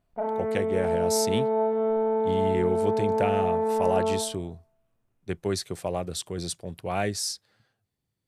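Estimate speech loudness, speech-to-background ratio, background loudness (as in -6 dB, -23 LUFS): -30.5 LUFS, -4.5 dB, -26.0 LUFS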